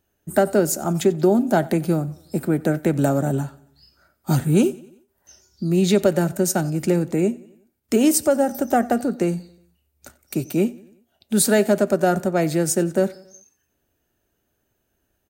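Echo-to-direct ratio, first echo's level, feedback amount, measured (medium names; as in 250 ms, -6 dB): -20.5 dB, -22.0 dB, 51%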